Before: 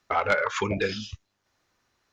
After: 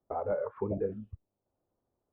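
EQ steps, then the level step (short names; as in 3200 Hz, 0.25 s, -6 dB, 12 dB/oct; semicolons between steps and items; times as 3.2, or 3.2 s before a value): ladder low-pass 820 Hz, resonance 25%; 0.0 dB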